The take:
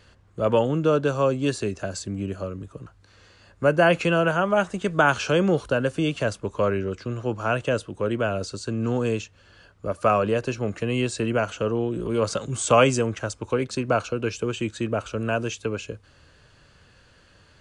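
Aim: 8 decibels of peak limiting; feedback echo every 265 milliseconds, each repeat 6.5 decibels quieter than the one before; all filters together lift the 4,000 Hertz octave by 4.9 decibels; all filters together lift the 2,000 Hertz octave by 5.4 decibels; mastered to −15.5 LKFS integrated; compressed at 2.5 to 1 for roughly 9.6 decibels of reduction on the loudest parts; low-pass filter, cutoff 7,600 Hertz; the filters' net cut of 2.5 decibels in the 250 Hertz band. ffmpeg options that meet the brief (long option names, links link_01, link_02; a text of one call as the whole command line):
ffmpeg -i in.wav -af "lowpass=7600,equalizer=frequency=250:width_type=o:gain=-3.5,equalizer=frequency=2000:width_type=o:gain=7.5,equalizer=frequency=4000:width_type=o:gain=3.5,acompressor=threshold=-26dB:ratio=2.5,alimiter=limit=-20.5dB:level=0:latency=1,aecho=1:1:265|530|795|1060|1325|1590:0.473|0.222|0.105|0.0491|0.0231|0.0109,volume=15dB" out.wav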